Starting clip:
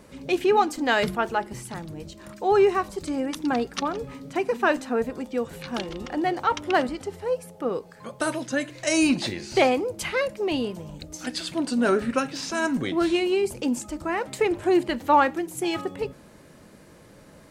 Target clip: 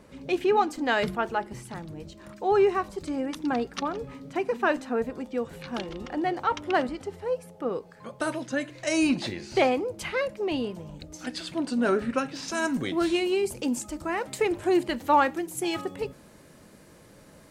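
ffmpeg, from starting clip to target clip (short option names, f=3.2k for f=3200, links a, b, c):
-af "asetnsamples=n=441:p=0,asendcmd='12.48 highshelf g 4',highshelf=f=5.1k:g=-6,volume=-2.5dB"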